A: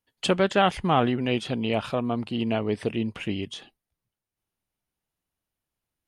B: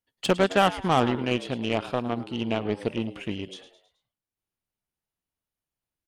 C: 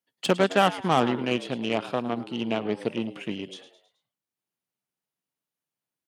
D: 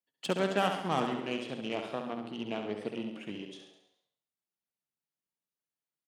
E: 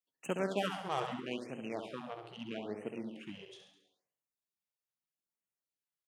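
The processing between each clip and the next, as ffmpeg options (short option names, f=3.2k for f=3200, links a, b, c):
-filter_complex "[0:a]asplit=5[a][b][c][d][e];[b]adelay=107,afreqshift=87,volume=-13dB[f];[c]adelay=214,afreqshift=174,volume=-19.9dB[g];[d]adelay=321,afreqshift=261,volume=-26.9dB[h];[e]adelay=428,afreqshift=348,volume=-33.8dB[i];[a][f][g][h][i]amix=inputs=5:normalize=0,aeval=exprs='0.376*(cos(1*acos(clip(val(0)/0.376,-1,1)))-cos(1*PI/2))+0.0188*(cos(5*acos(clip(val(0)/0.376,-1,1)))-cos(5*PI/2))+0.0376*(cos(7*acos(clip(val(0)/0.376,-1,1)))-cos(7*PI/2))':c=same"
-af "highpass=f=130:w=0.5412,highpass=f=130:w=1.3066"
-filter_complex "[0:a]bandreject=f=60:t=h:w=6,bandreject=f=120:t=h:w=6,asplit=2[a][b];[b]aecho=0:1:68|136|204|272|340|408|476:0.473|0.251|0.133|0.0704|0.0373|0.0198|0.0105[c];[a][c]amix=inputs=2:normalize=0,volume=-9dB"
-af "afftfilt=real='re*(1-between(b*sr/1024,220*pow(4500/220,0.5+0.5*sin(2*PI*0.78*pts/sr))/1.41,220*pow(4500/220,0.5+0.5*sin(2*PI*0.78*pts/sr))*1.41))':imag='im*(1-between(b*sr/1024,220*pow(4500/220,0.5+0.5*sin(2*PI*0.78*pts/sr))/1.41,220*pow(4500/220,0.5+0.5*sin(2*PI*0.78*pts/sr))*1.41))':win_size=1024:overlap=0.75,volume=-4.5dB"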